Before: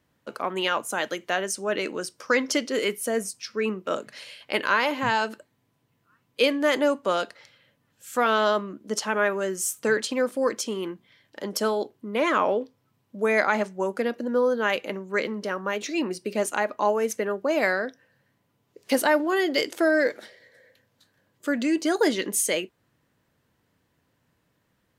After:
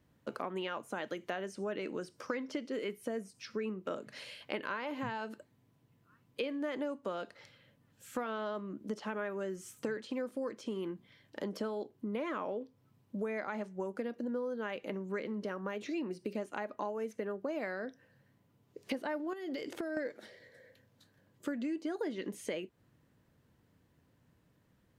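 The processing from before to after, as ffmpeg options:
-filter_complex "[0:a]asettb=1/sr,asplit=3[s0][s1][s2];[s0]atrim=end=19.334[s3];[s1]atrim=start=19.33:end=19.97,asetpts=PTS-STARTPTS,afade=t=in:d=0.004:c=qsin,afade=t=out:st=0.636:d=0.004:c=qsin,acompressor=threshold=0.0316:ratio=12:attack=3.2:release=140:knee=1:detection=peak[s4];[s2]atrim=start=19.966[s5];[s3][s4]acrossfade=d=0.004:c1=hsin:c2=qsin[s6];[s6][s5]acrossfade=d=0.004:c1=qsin:c2=hsin,acrossover=split=3700[s7][s8];[s8]acompressor=threshold=0.00501:ratio=4:attack=1:release=60[s9];[s7][s9]amix=inputs=2:normalize=0,lowshelf=f=440:g=8.5,acompressor=threshold=0.0316:ratio=6,volume=0.562"

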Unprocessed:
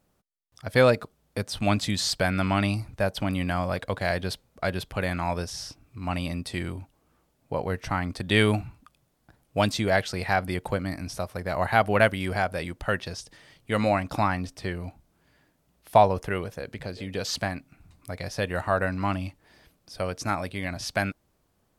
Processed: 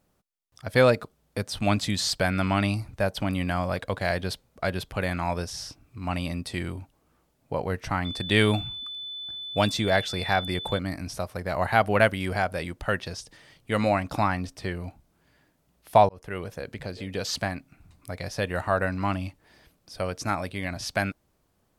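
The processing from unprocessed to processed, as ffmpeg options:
-filter_complex "[0:a]asettb=1/sr,asplit=3[s0][s1][s2];[s0]atrim=end=8.054[s3];[s1]atrim=start=8.05:end=10.79,asetpts=PTS-STARTPTS,afade=t=in:d=0.004:c=qsin,afade=t=out:st=2.736:d=0.004:c=qsin,aeval=exprs='val(0)+0.02*sin(2*PI*3500*n/s)':c=same[s4];[s2]atrim=start=10.786[s5];[s3][s4]acrossfade=d=0.004:c1=hsin:c2=qsin[s6];[s6][s5]acrossfade=d=0.004:c1=qsin:c2=hsin,asplit=2[s7][s8];[s7]atrim=end=16.09,asetpts=PTS-STARTPTS,afade=t=out:st=16.086:d=0.004:c=hsin[s9];[s8]atrim=start=16.09,asetpts=PTS-STARTPTS,afade=t=in:d=0.44[s10];[s9][s10]concat=n=2:v=0:a=1"

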